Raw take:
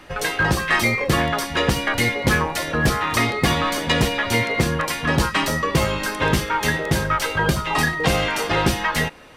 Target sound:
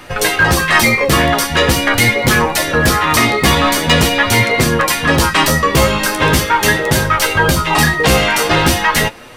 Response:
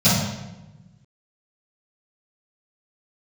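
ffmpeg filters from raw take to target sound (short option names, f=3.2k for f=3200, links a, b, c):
-af "apsyclip=14dB,flanger=delay=7.9:depth=7.3:regen=44:speed=0.43:shape=triangular,highshelf=f=7.6k:g=6.5,volume=-1.5dB"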